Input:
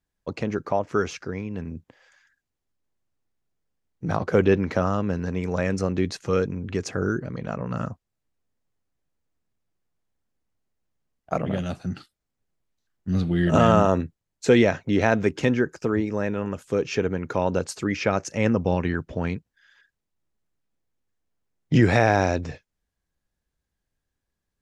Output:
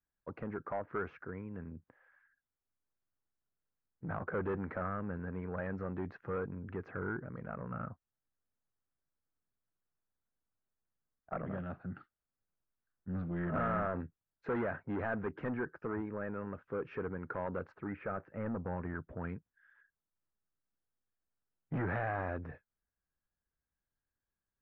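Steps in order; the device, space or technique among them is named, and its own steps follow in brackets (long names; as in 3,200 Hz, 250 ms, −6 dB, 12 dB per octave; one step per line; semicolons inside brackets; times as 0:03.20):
overdriven synthesiser ladder filter (soft clipping −19.5 dBFS, distortion −8 dB; transistor ladder low-pass 1,800 Hz, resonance 45%)
0:17.72–0:19.19: high-frequency loss of the air 360 metres
level −3 dB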